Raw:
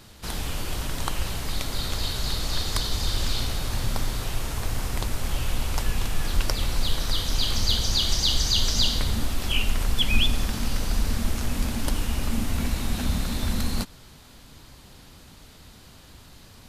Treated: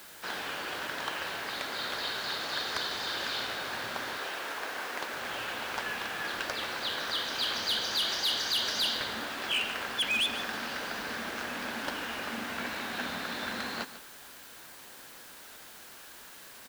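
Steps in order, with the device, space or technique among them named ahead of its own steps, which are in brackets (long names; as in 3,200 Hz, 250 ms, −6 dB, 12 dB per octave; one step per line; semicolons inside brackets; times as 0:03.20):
0:04.17–0:05.14: high-pass filter 250 Hz 12 dB per octave
drive-through speaker (band-pass filter 430–3,600 Hz; parametric band 1,600 Hz +8 dB 0.36 octaves; hard clipping −24.5 dBFS, distortion −14 dB; white noise bed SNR 16 dB)
single-tap delay 147 ms −13.5 dB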